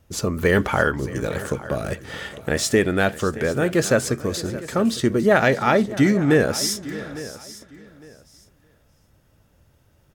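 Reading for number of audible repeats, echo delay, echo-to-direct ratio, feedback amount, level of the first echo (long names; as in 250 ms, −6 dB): 4, 621 ms, −14.0 dB, repeats not evenly spaced, −17.5 dB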